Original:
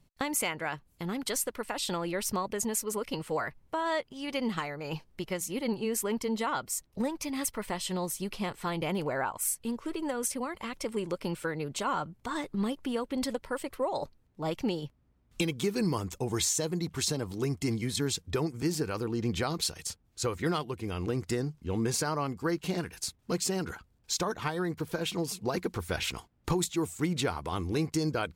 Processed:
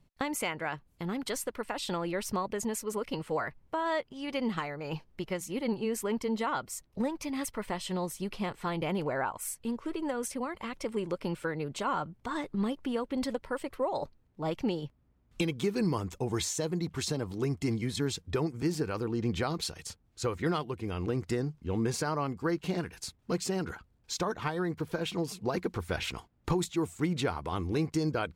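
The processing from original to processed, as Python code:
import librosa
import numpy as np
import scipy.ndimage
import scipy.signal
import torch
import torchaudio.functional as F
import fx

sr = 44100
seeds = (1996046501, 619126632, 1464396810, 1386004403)

y = fx.high_shelf(x, sr, hz=4800.0, db=-8.5)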